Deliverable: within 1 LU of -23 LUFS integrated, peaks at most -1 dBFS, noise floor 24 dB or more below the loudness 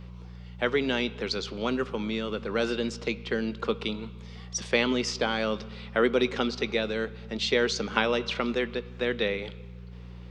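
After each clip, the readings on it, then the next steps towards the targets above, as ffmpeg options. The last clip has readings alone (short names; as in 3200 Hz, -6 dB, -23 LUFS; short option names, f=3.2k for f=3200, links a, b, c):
hum 60 Hz; harmonics up to 180 Hz; hum level -41 dBFS; loudness -28.5 LUFS; peak -8.5 dBFS; loudness target -23.0 LUFS
-> -af "bandreject=f=60:t=h:w=4,bandreject=f=120:t=h:w=4,bandreject=f=180:t=h:w=4"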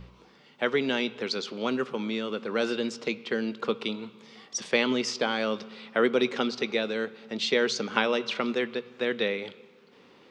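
hum none; loudness -29.0 LUFS; peak -8.5 dBFS; loudness target -23.0 LUFS
-> -af "volume=6dB"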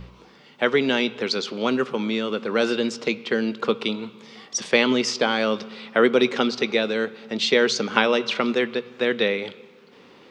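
loudness -23.0 LUFS; peak -2.5 dBFS; noise floor -51 dBFS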